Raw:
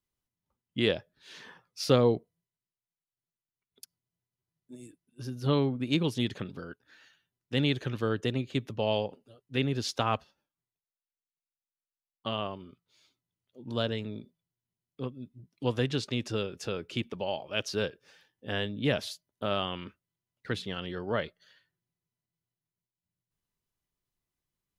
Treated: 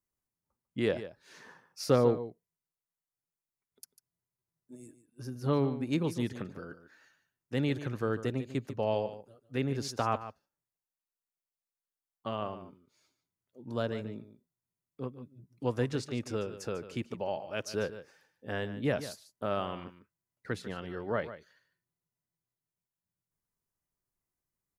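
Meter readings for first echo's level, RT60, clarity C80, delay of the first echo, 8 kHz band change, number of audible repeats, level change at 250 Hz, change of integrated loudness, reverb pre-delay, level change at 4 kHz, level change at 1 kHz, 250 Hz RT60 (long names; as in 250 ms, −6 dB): −13.0 dB, no reverb audible, no reverb audible, 147 ms, −2.0 dB, 1, −2.5 dB, −2.5 dB, no reverb audible, −10.0 dB, −1.0 dB, no reverb audible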